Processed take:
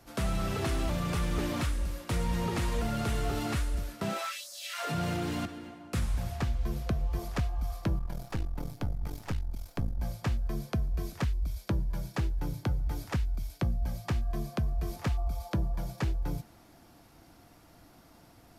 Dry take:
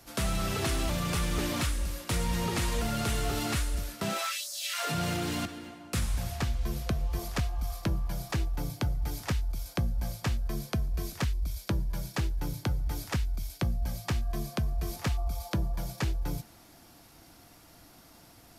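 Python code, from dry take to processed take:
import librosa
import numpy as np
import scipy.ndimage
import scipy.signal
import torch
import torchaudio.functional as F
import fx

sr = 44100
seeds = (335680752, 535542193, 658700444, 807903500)

y = fx.halfwave_gain(x, sr, db=-12.0, at=(7.98, 10.0))
y = fx.high_shelf(y, sr, hz=2400.0, db=-8.0)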